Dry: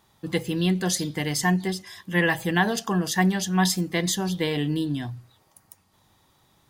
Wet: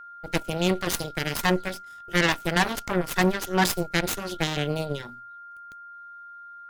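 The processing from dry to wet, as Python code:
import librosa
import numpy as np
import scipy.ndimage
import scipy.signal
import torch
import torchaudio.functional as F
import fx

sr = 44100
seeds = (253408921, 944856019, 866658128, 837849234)

y = fx.cheby_harmonics(x, sr, harmonics=(7, 8), levels_db=(-16, -16), full_scale_db=-7.5)
y = fx.wow_flutter(y, sr, seeds[0], rate_hz=2.1, depth_cents=17.0)
y = y + 10.0 ** (-41.0 / 20.0) * np.sin(2.0 * np.pi * 1400.0 * np.arange(len(y)) / sr)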